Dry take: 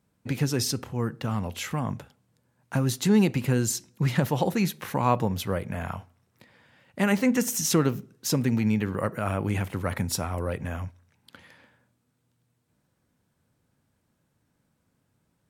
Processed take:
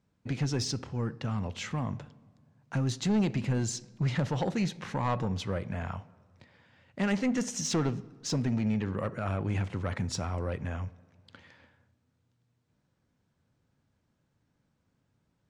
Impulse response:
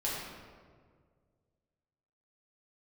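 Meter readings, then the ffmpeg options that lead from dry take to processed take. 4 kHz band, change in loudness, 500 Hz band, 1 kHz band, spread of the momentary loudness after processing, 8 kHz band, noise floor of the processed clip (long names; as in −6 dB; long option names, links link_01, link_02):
−4.5 dB, −5.0 dB, −6.5 dB, −6.5 dB, 8 LU, −7.0 dB, −76 dBFS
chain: -filter_complex "[0:a]lowpass=frequency=7000:width=0.5412,lowpass=frequency=7000:width=1.3066,lowshelf=frequency=120:gain=4,asoftclip=type=tanh:threshold=-18dB,asplit=2[link_01][link_02];[1:a]atrim=start_sample=2205[link_03];[link_02][link_03]afir=irnorm=-1:irlink=0,volume=-24.5dB[link_04];[link_01][link_04]amix=inputs=2:normalize=0,volume=-4dB"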